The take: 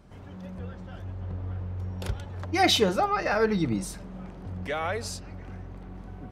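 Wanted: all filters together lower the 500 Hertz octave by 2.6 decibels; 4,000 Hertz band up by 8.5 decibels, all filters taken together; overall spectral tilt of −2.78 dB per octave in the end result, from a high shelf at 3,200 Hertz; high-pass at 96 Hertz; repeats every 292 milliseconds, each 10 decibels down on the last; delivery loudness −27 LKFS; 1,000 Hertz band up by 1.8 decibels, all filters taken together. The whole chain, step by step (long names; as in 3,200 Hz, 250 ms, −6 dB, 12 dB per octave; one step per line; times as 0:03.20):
high-pass filter 96 Hz
parametric band 500 Hz −4.5 dB
parametric band 1,000 Hz +4 dB
high-shelf EQ 3,200 Hz +4 dB
parametric band 4,000 Hz +7 dB
repeating echo 292 ms, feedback 32%, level −10 dB
level −5 dB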